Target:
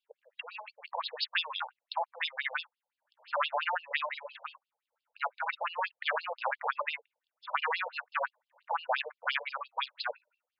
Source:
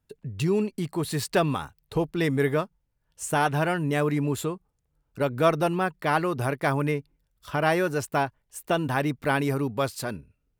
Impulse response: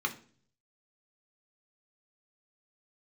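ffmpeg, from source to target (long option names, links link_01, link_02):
-af "afftfilt=real='re*lt(hypot(re,im),0.224)':imag='im*lt(hypot(re,im),0.224)':win_size=1024:overlap=0.75,afftfilt=real='re*between(b*sr/1024,640*pow(3800/640,0.5+0.5*sin(2*PI*5.8*pts/sr))/1.41,640*pow(3800/640,0.5+0.5*sin(2*PI*5.8*pts/sr))*1.41)':imag='im*between(b*sr/1024,640*pow(3800/640,0.5+0.5*sin(2*PI*5.8*pts/sr))/1.41,640*pow(3800/640,0.5+0.5*sin(2*PI*5.8*pts/sr))*1.41)':win_size=1024:overlap=0.75,volume=6dB"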